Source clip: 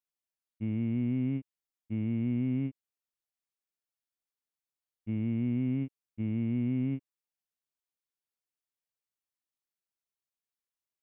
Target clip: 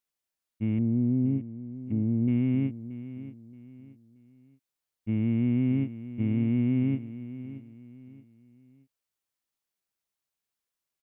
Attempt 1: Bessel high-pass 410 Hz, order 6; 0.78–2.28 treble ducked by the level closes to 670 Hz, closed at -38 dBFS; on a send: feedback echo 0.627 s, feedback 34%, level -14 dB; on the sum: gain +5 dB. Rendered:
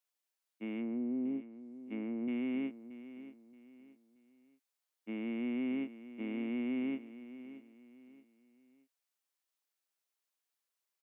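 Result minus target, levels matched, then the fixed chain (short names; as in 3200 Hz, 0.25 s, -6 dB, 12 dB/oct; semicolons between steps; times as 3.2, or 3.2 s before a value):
500 Hz band +7.0 dB
0.78–2.28 treble ducked by the level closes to 670 Hz, closed at -38 dBFS; on a send: feedback echo 0.627 s, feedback 34%, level -14 dB; on the sum: gain +5 dB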